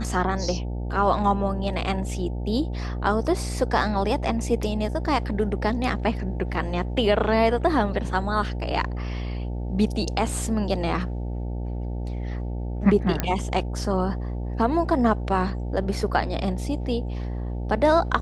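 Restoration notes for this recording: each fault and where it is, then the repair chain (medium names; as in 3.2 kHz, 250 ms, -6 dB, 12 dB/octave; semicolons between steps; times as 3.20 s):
buzz 60 Hz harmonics 15 -29 dBFS
13.20 s: pop -8 dBFS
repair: de-click; de-hum 60 Hz, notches 15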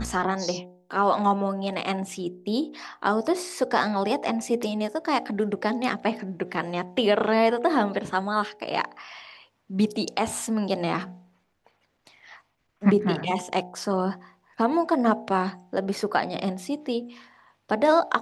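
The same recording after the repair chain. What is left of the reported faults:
13.20 s: pop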